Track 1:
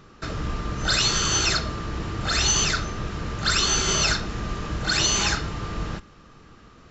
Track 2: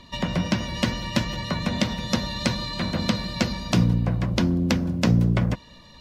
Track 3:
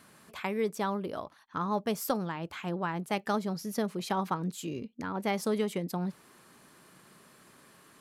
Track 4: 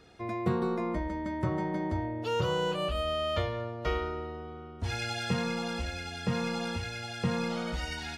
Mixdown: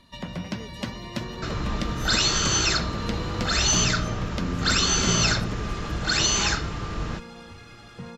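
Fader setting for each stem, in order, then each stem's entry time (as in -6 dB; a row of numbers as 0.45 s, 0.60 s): -0.5 dB, -8.5 dB, -14.5 dB, -10.0 dB; 1.20 s, 0.00 s, 0.00 s, 0.75 s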